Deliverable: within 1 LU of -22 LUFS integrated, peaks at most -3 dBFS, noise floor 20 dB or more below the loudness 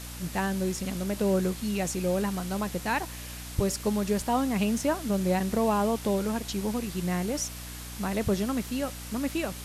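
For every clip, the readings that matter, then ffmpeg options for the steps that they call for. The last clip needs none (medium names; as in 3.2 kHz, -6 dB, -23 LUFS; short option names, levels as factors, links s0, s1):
hum 60 Hz; highest harmonic 300 Hz; hum level -39 dBFS; noise floor -40 dBFS; noise floor target -49 dBFS; loudness -29.0 LUFS; peak level -12.5 dBFS; loudness target -22.0 LUFS
-> -af "bandreject=f=60:t=h:w=6,bandreject=f=120:t=h:w=6,bandreject=f=180:t=h:w=6,bandreject=f=240:t=h:w=6,bandreject=f=300:t=h:w=6"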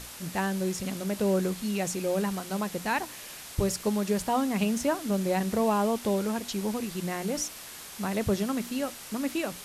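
hum not found; noise floor -44 dBFS; noise floor target -50 dBFS
-> -af "afftdn=nr=6:nf=-44"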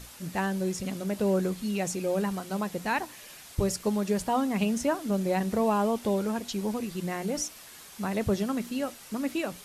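noise floor -48 dBFS; noise floor target -50 dBFS
-> -af "afftdn=nr=6:nf=-48"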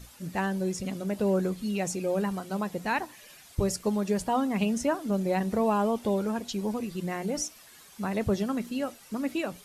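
noise floor -53 dBFS; loudness -29.5 LUFS; peak level -14.0 dBFS; loudness target -22.0 LUFS
-> -af "volume=2.37"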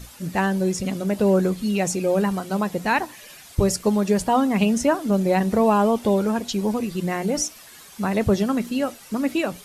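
loudness -22.0 LUFS; peak level -6.5 dBFS; noise floor -45 dBFS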